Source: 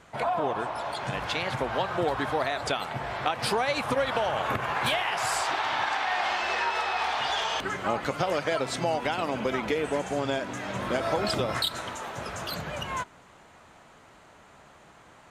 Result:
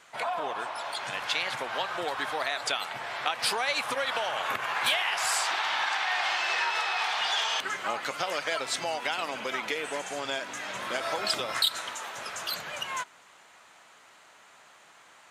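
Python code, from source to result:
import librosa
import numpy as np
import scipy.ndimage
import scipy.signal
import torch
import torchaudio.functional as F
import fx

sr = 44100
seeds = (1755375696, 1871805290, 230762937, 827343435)

y = fx.highpass(x, sr, hz=350.0, slope=6)
y = fx.tilt_shelf(y, sr, db=-6.0, hz=970.0)
y = y * 10.0 ** (-2.0 / 20.0)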